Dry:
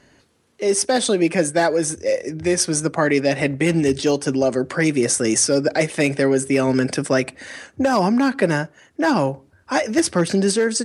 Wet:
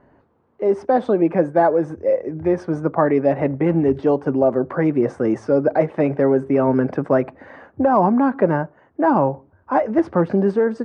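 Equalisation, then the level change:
low-pass with resonance 980 Hz, resonance Q 1.6
0.0 dB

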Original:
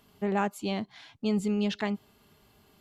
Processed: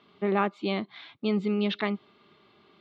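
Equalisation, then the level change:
loudspeaker in its box 140–4,300 Hz, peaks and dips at 190 Hz +3 dB, 350 Hz +10 dB, 550 Hz +4 dB, 1,200 Hz +10 dB, 2,200 Hz +8 dB, 3,700 Hz +9 dB
−1.5 dB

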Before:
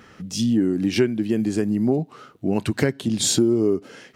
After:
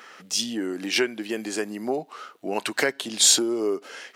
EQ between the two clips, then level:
high-pass filter 650 Hz 12 dB per octave
+5.0 dB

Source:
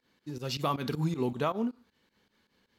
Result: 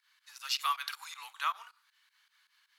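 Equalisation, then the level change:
Butterworth high-pass 1,100 Hz 36 dB per octave
parametric band 10,000 Hz +5.5 dB 0.3 octaves
+4.0 dB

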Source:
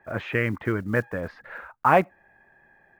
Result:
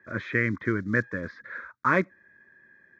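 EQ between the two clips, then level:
loudspeaker in its box 100–7,900 Hz, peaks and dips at 150 Hz −6 dB, 450 Hz −3 dB, 810 Hz −6 dB, 1,300 Hz −4 dB, 4,700 Hz −5 dB
low-shelf EQ 140 Hz −4 dB
phaser with its sweep stopped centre 2,800 Hz, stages 6
+3.5 dB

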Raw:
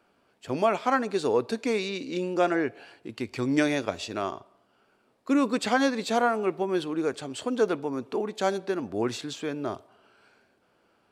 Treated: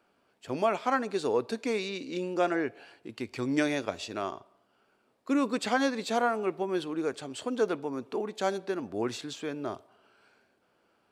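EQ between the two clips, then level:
low-shelf EQ 140 Hz −3.5 dB
−3.0 dB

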